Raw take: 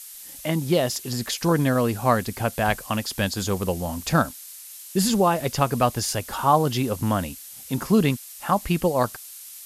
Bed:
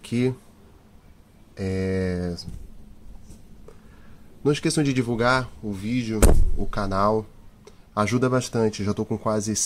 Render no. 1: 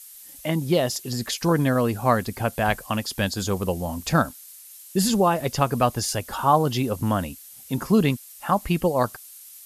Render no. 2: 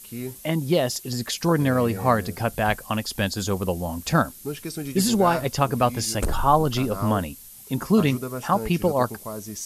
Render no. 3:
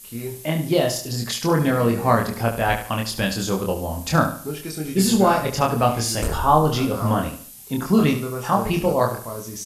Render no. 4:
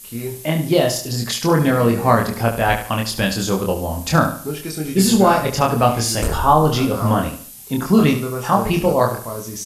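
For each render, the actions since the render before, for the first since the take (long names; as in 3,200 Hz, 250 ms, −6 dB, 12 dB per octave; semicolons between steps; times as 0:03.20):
broadband denoise 6 dB, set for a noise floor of −42 dBFS
mix in bed −10.5 dB
double-tracking delay 26 ms −2.5 dB; repeating echo 72 ms, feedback 37%, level −10.5 dB
level +3.5 dB; brickwall limiter −2 dBFS, peak gain reduction 2.5 dB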